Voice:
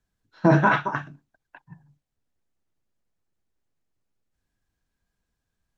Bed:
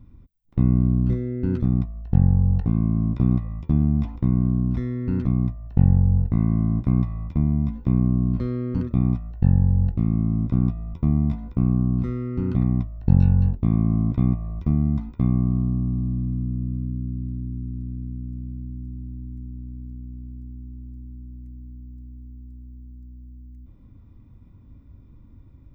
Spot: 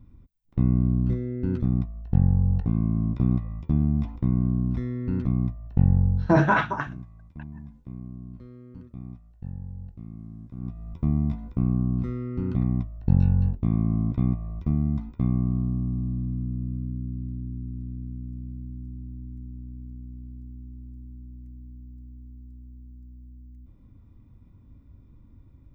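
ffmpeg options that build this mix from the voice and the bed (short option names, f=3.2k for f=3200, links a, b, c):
-filter_complex "[0:a]adelay=5850,volume=-1.5dB[a];[1:a]volume=12.5dB,afade=t=out:st=6.05:d=0.39:silence=0.158489,afade=t=in:st=10.56:d=0.44:silence=0.16788[b];[a][b]amix=inputs=2:normalize=0"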